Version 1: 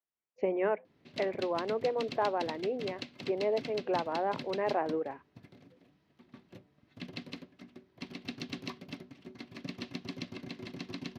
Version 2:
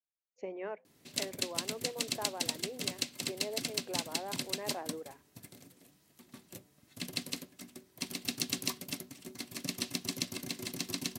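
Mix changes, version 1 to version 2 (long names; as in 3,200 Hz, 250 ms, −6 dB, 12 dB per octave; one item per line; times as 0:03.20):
speech −11.5 dB
master: remove high-frequency loss of the air 290 metres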